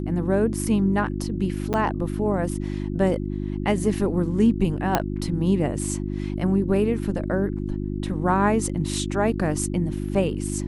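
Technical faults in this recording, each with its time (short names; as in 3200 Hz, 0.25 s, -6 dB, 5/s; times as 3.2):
hum 50 Hz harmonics 7 -28 dBFS
1.73–1.74 gap 8.9 ms
4.95 pop -5 dBFS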